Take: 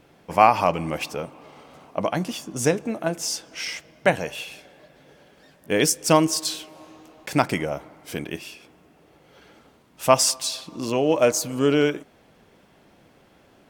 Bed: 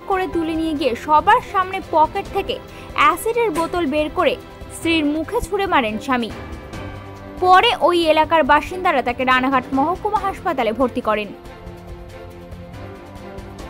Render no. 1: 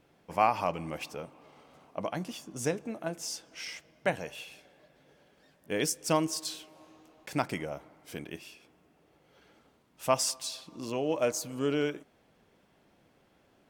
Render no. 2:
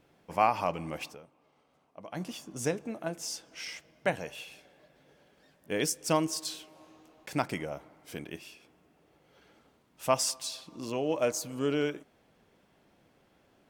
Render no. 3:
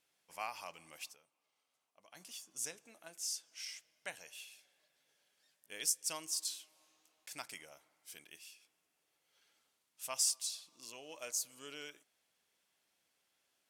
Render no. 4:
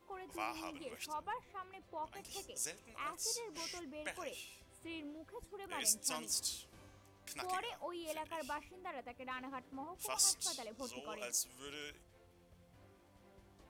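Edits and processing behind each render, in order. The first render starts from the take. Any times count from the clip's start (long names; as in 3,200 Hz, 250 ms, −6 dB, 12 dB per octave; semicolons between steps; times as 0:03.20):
level −10 dB
0:01.06–0:02.21: duck −12 dB, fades 0.13 s
low-pass filter 12,000 Hz 12 dB per octave; first-order pre-emphasis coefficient 0.97
mix in bed −30 dB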